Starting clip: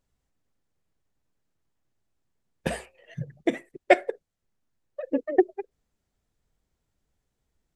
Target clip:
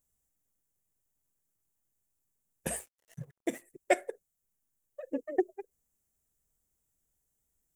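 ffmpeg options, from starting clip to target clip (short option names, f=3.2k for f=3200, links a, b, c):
-filter_complex "[0:a]asettb=1/sr,asplit=3[a][b][c];[a]atrim=end=2.764[d];[b]atrim=start=2.76:end=3.62,asetpts=PTS-STARTPTS,afade=t=in:d=0.004:c=qsin,afade=t=out:st=0.856:d=0.004:c=qsin,aeval=exprs='sgn(val(0))*max(abs(val(0))-0.00299,0)':c=same[e];[c]atrim=start=3.616[f];[d][e]acrossfade=d=0.004:c1=hsin:c2=qsin[g];[g][f]acrossfade=d=0.004:c1=qsin:c2=hsin,aexciter=amount=5.8:drive=7.1:freq=6.4k,volume=-8.5dB"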